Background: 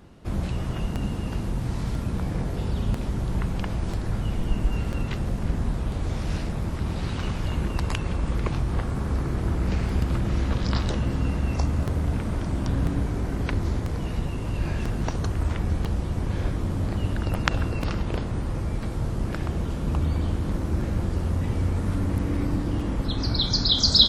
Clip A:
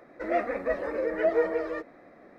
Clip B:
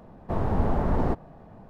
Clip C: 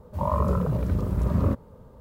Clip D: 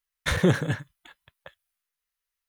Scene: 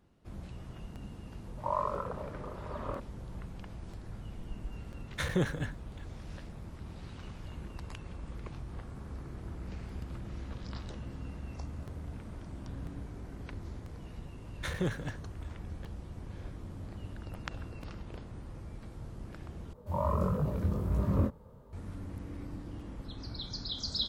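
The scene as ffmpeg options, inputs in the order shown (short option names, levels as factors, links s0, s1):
-filter_complex "[3:a]asplit=2[s0][s1];[4:a]asplit=2[s2][s3];[0:a]volume=0.141[s4];[s0]highpass=600,lowpass=2600[s5];[s1]flanger=delay=20:depth=4.5:speed=1.5[s6];[s4]asplit=2[s7][s8];[s7]atrim=end=19.734[s9];[s6]atrim=end=2,asetpts=PTS-STARTPTS,volume=0.75[s10];[s8]atrim=start=21.726[s11];[s5]atrim=end=2,asetpts=PTS-STARTPTS,volume=0.708,afade=t=in:d=0.004:c=hsin,afade=t=out:st=1.996:d=0.004:c=hsin,adelay=1450[s12];[s2]atrim=end=2.48,asetpts=PTS-STARTPTS,volume=0.355,afade=t=in:d=0.004:c=hsin,afade=t=out:st=2.476:d=0.004:c=hsin,adelay=4920[s13];[s3]atrim=end=2.48,asetpts=PTS-STARTPTS,volume=0.251,afade=t=in:d=0.004:c=hsin,afade=t=out:st=2.476:d=0.004:c=hsin,adelay=14370[s14];[s9][s10]acrossfade=d=0.004:c1=hsin:c2=hsin[s15];[s15][s11]acrossfade=d=0.004:c1=hsin:c2=hsin[s16];[s16][s12][s13][s14]amix=inputs=4:normalize=0"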